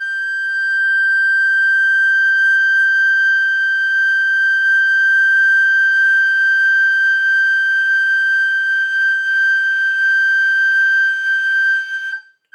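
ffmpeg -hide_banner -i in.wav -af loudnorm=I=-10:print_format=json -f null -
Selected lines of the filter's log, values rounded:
"input_i" : "-12.8",
"input_tp" : "-8.2",
"input_lra" : "2.5",
"input_thresh" : "-22.9",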